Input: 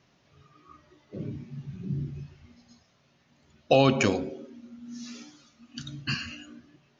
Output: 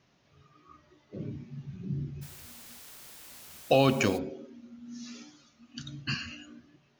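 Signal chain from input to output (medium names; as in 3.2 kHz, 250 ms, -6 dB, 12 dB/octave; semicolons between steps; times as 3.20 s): 2.21–4.17 s: added noise white -47 dBFS; trim -2.5 dB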